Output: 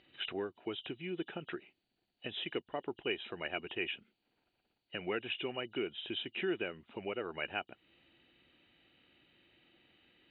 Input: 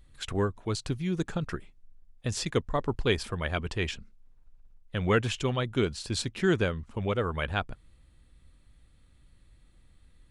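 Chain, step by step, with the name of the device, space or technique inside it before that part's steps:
hearing aid with frequency lowering (hearing-aid frequency compression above 2,800 Hz 4 to 1; downward compressor 2.5 to 1, threshold −42 dBFS, peak gain reduction 15 dB; loudspeaker in its box 310–5,200 Hz, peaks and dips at 350 Hz +6 dB, 510 Hz −3 dB, 730 Hz +3 dB, 1,100 Hz −8 dB, 2,500 Hz +8 dB, 3,600 Hz −7 dB)
level +3 dB

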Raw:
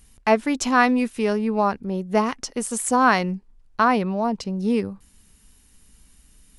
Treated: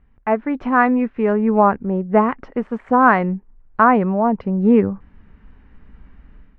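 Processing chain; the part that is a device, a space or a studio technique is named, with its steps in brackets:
action camera in a waterproof case (low-pass filter 1,900 Hz 24 dB per octave; automatic gain control gain up to 12 dB; level −1 dB; AAC 64 kbit/s 32,000 Hz)

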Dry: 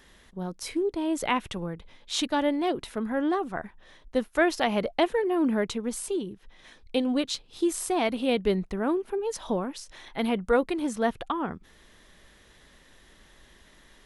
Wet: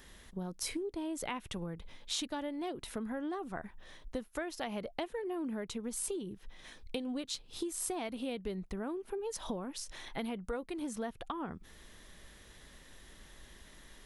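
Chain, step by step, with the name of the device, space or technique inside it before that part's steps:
ASMR close-microphone chain (low-shelf EQ 170 Hz +4.5 dB; downward compressor 6 to 1, threshold −34 dBFS, peak gain reduction 16.5 dB; high-shelf EQ 7,000 Hz +7.5 dB)
level −2 dB

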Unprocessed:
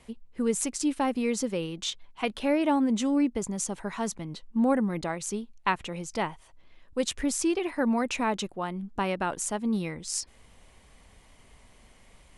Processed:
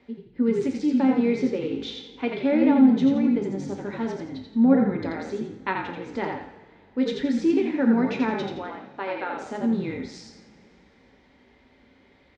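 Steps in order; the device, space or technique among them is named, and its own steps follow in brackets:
0:08.58–0:09.33: high-pass filter 530 Hz 12 dB per octave
frequency-shifting delay pedal into a guitar cabinet (echo with shifted repeats 85 ms, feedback 37%, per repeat −50 Hz, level −4 dB; loudspeaker in its box 110–3,900 Hz, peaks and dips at 130 Hz −10 dB, 270 Hz +6 dB, 430 Hz +4 dB, 660 Hz −6 dB, 1,100 Hz −8 dB, 2,900 Hz −9 dB)
coupled-rooms reverb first 0.47 s, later 3.2 s, from −20 dB, DRR 3.5 dB

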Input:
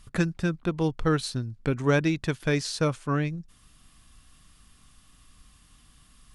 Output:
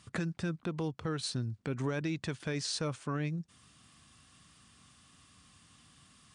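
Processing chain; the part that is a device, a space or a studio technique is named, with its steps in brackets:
podcast mastering chain (high-pass filter 83 Hz 24 dB per octave; downward compressor 3 to 1, threshold −27 dBFS, peak gain reduction 8 dB; brickwall limiter −24.5 dBFS, peak gain reduction 7.5 dB; MP3 96 kbit/s 22,050 Hz)

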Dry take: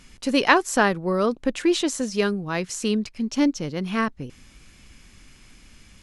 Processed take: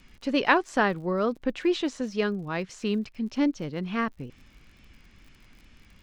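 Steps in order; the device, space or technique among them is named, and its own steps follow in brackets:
lo-fi chain (low-pass filter 3,800 Hz 12 dB per octave; tape wow and flutter; surface crackle 50 per second −41 dBFS)
level −4 dB

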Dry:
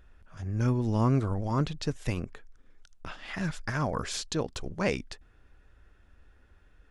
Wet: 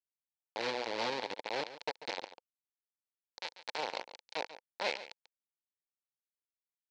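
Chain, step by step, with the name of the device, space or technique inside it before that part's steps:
hand-held game console (bit reduction 4 bits; loudspeaker in its box 500–5,300 Hz, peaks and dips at 510 Hz +6 dB, 880 Hz +7 dB, 1,200 Hz −9 dB, 2,300 Hz +4 dB, 4,200 Hz +8 dB)
single-tap delay 141 ms −14 dB
level −7.5 dB

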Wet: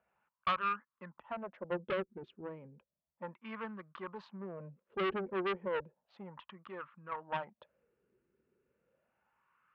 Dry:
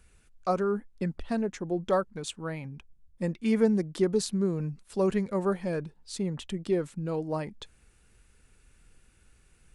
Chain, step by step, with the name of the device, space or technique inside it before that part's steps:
adaptive Wiener filter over 9 samples
wah-wah guitar rig (LFO wah 0.33 Hz 370–1,200 Hz, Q 5.8; tube saturation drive 38 dB, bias 0.6; loudspeaker in its box 87–3,700 Hz, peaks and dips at 100 Hz −8 dB, 300 Hz −10 dB, 430 Hz −10 dB, 740 Hz −10 dB, 2,900 Hz +4 dB)
0:01.78–0:02.43: parametric band 880 Hz −4.5 dB
level +13.5 dB

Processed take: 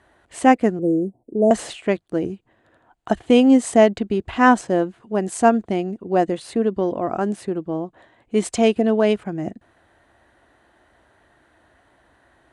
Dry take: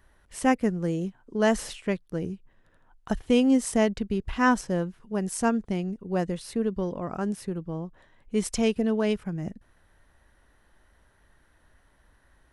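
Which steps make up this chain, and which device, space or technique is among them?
car door speaker (loudspeaker in its box 100–8,800 Hz, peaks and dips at 170 Hz −7 dB, 330 Hz +6 dB, 700 Hz +8 dB, 5,500 Hz −9 dB)
0:00.79–0:01.51: inverse Chebyshev band-stop filter 1,600–3,800 Hz, stop band 70 dB
level +6.5 dB

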